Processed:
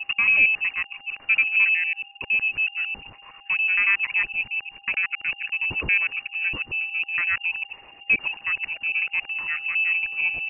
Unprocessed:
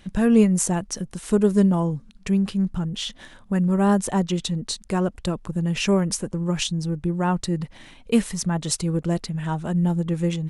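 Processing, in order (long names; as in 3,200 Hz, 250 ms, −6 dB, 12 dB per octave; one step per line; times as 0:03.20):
reversed piece by piece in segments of 92 ms
steady tone 2,000 Hz −52 dBFS
voice inversion scrambler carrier 2,800 Hz
level −2 dB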